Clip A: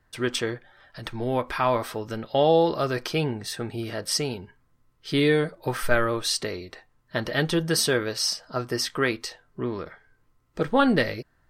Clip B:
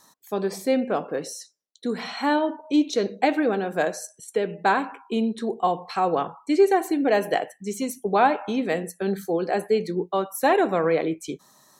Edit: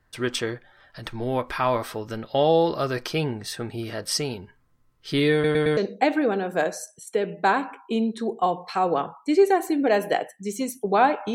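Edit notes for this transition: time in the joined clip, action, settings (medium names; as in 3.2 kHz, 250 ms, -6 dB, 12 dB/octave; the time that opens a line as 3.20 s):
clip A
5.33 s: stutter in place 0.11 s, 4 plays
5.77 s: go over to clip B from 2.98 s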